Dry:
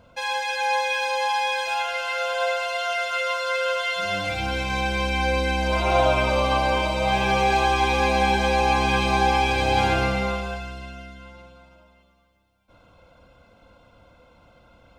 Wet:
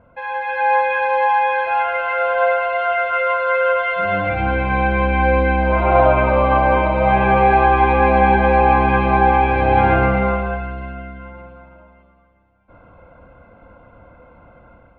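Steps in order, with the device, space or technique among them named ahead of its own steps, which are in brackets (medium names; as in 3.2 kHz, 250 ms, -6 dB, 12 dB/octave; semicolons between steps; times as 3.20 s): action camera in a waterproof case (low-pass 2 kHz 24 dB/octave; level rider gain up to 7 dB; trim +1.5 dB; AAC 64 kbps 48 kHz)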